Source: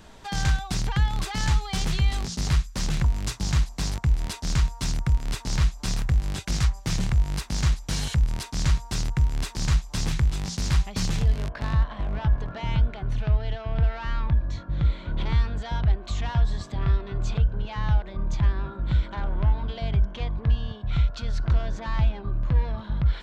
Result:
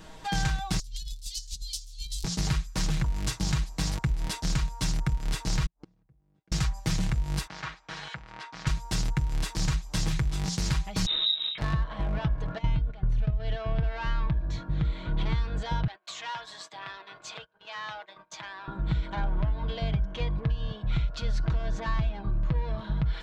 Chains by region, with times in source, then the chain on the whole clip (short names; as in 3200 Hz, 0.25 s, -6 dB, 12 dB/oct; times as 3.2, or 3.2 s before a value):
0.79–2.24 inverse Chebyshev band-stop 110–1400 Hz, stop band 60 dB + negative-ratio compressor -36 dBFS, ratio -0.5
5.66–6.52 band-pass 280 Hz, Q 0.72 + flipped gate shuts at -31 dBFS, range -34 dB
7.47–8.67 band-pass 1400 Hz, Q 0.98 + air absorption 75 m
11.06–11.58 inverted band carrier 3800 Hz + detuned doubles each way 33 cents
12.58–13.4 gate -31 dBFS, range -13 dB + low shelf 140 Hz +11.5 dB + compressor, threshold -15 dBFS
15.87–18.68 Bessel high-pass 990 Hz + gate -50 dBFS, range -23 dB
whole clip: comb 6.3 ms, depth 57%; compressor, threshold -23 dBFS